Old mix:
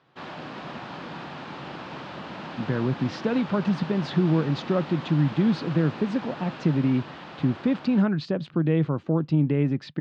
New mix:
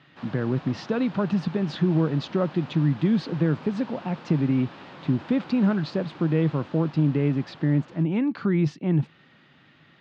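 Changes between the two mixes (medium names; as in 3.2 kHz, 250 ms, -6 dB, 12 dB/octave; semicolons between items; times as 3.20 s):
speech: entry -2.35 s; background -6.0 dB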